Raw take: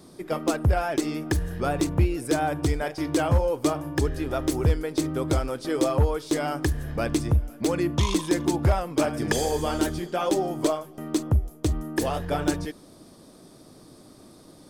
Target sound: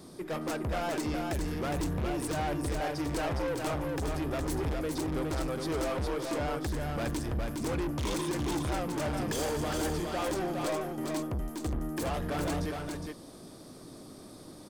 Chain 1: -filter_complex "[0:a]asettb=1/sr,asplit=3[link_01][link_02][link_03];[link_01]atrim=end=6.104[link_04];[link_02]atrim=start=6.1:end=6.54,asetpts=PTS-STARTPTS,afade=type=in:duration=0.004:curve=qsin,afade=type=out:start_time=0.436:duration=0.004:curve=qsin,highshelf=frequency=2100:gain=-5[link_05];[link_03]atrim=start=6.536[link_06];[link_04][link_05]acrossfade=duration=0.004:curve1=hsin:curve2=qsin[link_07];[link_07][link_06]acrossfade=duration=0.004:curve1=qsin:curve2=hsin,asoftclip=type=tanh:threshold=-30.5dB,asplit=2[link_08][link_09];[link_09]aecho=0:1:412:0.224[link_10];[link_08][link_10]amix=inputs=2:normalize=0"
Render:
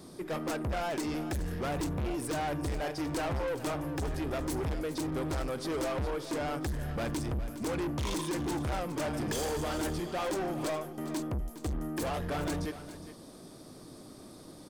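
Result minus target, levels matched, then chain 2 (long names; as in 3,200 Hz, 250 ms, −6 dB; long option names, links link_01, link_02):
echo-to-direct −9 dB
-filter_complex "[0:a]asettb=1/sr,asplit=3[link_01][link_02][link_03];[link_01]atrim=end=6.104[link_04];[link_02]atrim=start=6.1:end=6.54,asetpts=PTS-STARTPTS,afade=type=in:duration=0.004:curve=qsin,afade=type=out:start_time=0.436:duration=0.004:curve=qsin,highshelf=frequency=2100:gain=-5[link_05];[link_03]atrim=start=6.536[link_06];[link_04][link_05]acrossfade=duration=0.004:curve1=hsin:curve2=qsin[link_07];[link_07][link_06]acrossfade=duration=0.004:curve1=qsin:curve2=hsin,asoftclip=type=tanh:threshold=-30.5dB,asplit=2[link_08][link_09];[link_09]aecho=0:1:412:0.631[link_10];[link_08][link_10]amix=inputs=2:normalize=0"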